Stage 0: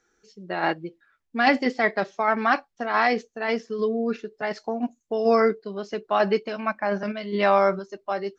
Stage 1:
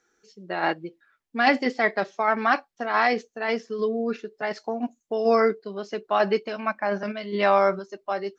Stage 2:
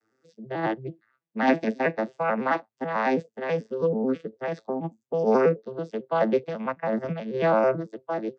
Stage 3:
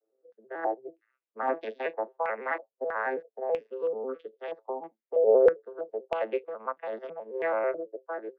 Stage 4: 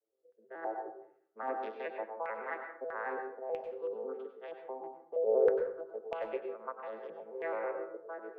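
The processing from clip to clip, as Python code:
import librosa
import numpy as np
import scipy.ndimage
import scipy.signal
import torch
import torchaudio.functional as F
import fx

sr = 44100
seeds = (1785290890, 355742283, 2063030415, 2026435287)

y1 = fx.low_shelf(x, sr, hz=100.0, db=-11.5)
y2 = fx.vocoder_arp(y1, sr, chord='minor triad', root=45, every_ms=109)
y3 = fx.ladder_highpass(y2, sr, hz=360.0, resonance_pct=45)
y3 = fx.filter_held_lowpass(y3, sr, hz=3.1, low_hz=580.0, high_hz=3300.0)
y3 = y3 * librosa.db_to_amplitude(-3.0)
y4 = fx.rev_plate(y3, sr, seeds[0], rt60_s=0.65, hf_ratio=0.5, predelay_ms=85, drr_db=5.0)
y4 = y4 * librosa.db_to_amplitude(-8.5)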